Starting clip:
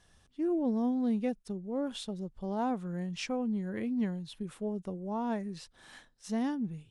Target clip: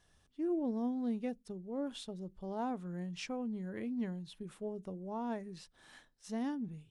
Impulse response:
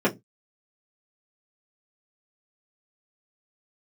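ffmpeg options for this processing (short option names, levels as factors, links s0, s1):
-filter_complex "[0:a]asplit=2[s0][s1];[1:a]atrim=start_sample=2205[s2];[s1][s2]afir=irnorm=-1:irlink=0,volume=0.0178[s3];[s0][s3]amix=inputs=2:normalize=0,volume=0.531"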